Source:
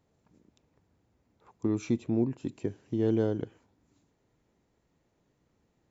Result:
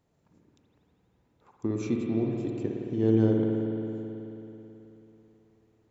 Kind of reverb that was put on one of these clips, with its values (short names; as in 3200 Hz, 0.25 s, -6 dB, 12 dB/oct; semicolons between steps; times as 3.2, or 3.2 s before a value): spring tank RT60 3.4 s, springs 54 ms, chirp 35 ms, DRR 0 dB; gain -1 dB